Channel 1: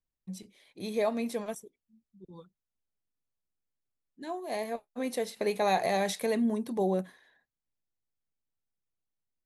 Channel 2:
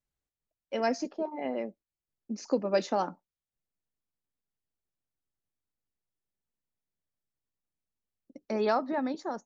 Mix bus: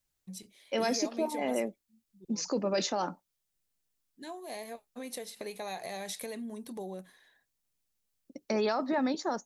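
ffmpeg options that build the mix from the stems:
-filter_complex "[0:a]acompressor=threshold=0.0141:ratio=3,volume=0.668[s0];[1:a]alimiter=level_in=1.06:limit=0.0631:level=0:latency=1:release=13,volume=0.944,volume=1.33[s1];[s0][s1]amix=inputs=2:normalize=0,highshelf=f=2800:g=9"

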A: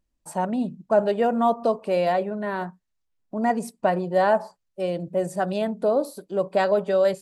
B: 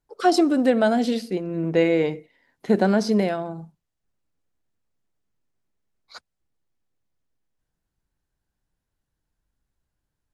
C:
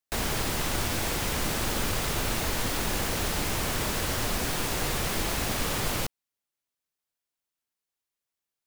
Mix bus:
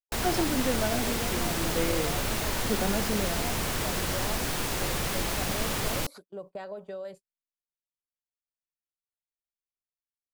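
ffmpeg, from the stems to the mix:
-filter_complex "[0:a]acompressor=threshold=0.0631:ratio=5,volume=0.251[s0];[1:a]volume=0.282[s1];[2:a]volume=0.891[s2];[s0][s1][s2]amix=inputs=3:normalize=0,agate=range=0.0562:threshold=0.00501:ratio=16:detection=peak"

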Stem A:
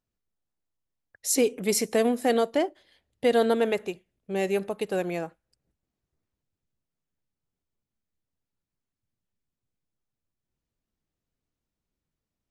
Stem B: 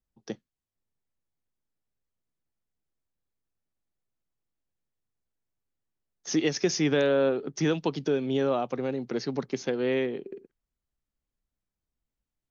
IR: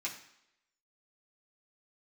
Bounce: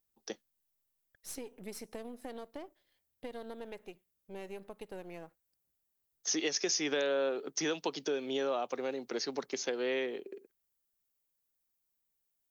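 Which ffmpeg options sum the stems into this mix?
-filter_complex "[0:a]aeval=exprs='if(lt(val(0),0),0.447*val(0),val(0))':c=same,bandreject=f=7100:w=8.7,acompressor=threshold=0.0447:ratio=6,volume=0.531,afade=t=out:st=1:d=0.21:silence=0.446684[s0];[1:a]highpass=390,aemphasis=mode=production:type=50fm,acompressor=threshold=0.0398:ratio=2.5,volume=0.794[s1];[s0][s1]amix=inputs=2:normalize=0"

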